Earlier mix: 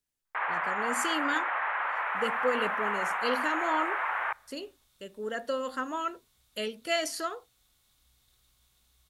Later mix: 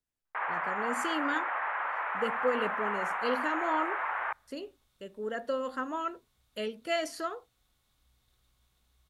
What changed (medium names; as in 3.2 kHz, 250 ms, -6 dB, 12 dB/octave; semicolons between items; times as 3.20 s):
first sound: send -6.0 dB; master: add treble shelf 2.7 kHz -9 dB